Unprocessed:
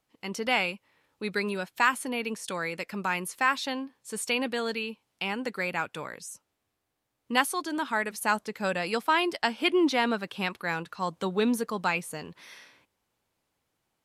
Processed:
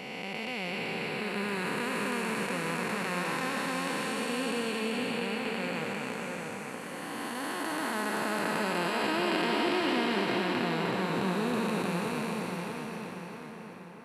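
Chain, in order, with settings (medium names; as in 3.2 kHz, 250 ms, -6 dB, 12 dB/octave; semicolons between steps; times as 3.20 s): spectral blur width 970 ms; two-band feedback delay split 2.3 kHz, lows 641 ms, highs 389 ms, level -4 dB; trim +4.5 dB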